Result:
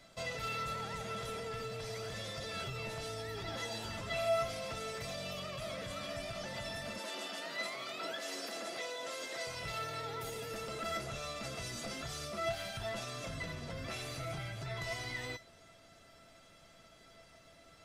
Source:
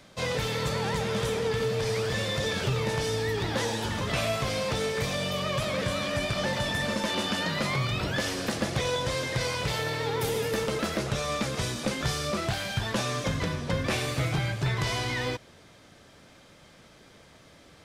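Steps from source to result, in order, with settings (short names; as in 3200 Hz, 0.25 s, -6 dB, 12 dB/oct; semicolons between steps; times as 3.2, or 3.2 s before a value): 6.98–9.47 HPF 260 Hz 24 dB/oct; limiter -26 dBFS, peak gain reduction 9.5 dB; resonator 670 Hz, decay 0.16 s, harmonics all, mix 90%; gain +8 dB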